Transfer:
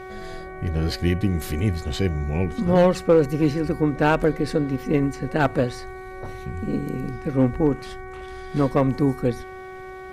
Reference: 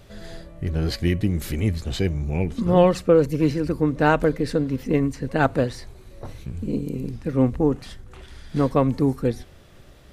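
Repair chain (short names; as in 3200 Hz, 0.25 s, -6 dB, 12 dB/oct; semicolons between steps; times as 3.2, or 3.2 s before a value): clip repair -8.5 dBFS; de-hum 374.8 Hz, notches 6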